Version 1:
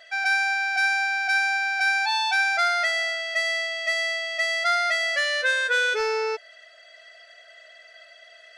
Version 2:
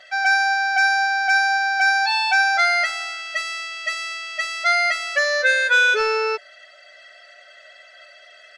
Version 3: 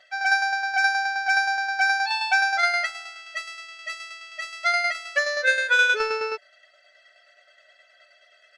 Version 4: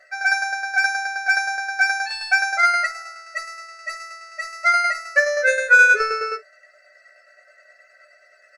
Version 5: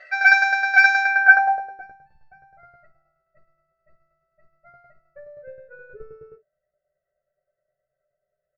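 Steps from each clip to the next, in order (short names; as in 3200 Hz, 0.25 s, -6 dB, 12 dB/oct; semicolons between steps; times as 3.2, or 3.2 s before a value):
high shelf 9900 Hz -11 dB; comb 5.3 ms, depth 98%; gain +3 dB
tremolo saw down 9.5 Hz, depth 45%; upward expander 1.5:1, over -32 dBFS
fixed phaser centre 900 Hz, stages 6; on a send: early reflections 15 ms -4.5 dB, 53 ms -17.5 dB; on the sum: gain +5.5 dB
low-pass sweep 3200 Hz -> 150 Hz, 1.01–2.05; gain +3.5 dB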